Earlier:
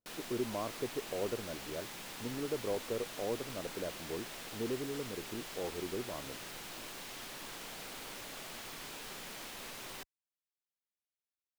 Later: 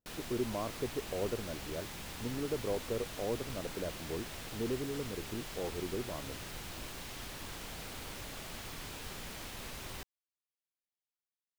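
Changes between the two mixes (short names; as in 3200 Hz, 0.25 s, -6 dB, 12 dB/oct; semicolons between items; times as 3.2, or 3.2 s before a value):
background: add bell 63 Hz +14.5 dB 1.4 oct; master: add low shelf 140 Hz +7.5 dB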